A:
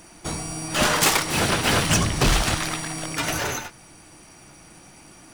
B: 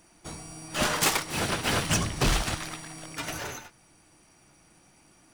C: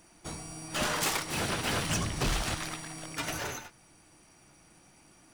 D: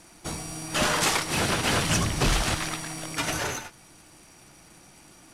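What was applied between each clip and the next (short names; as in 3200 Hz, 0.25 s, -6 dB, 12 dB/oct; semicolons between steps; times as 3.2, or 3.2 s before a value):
upward expander 1.5:1, over -30 dBFS; gain -4.5 dB
limiter -22.5 dBFS, peak gain reduction 7 dB
CVSD 64 kbps; gain +6.5 dB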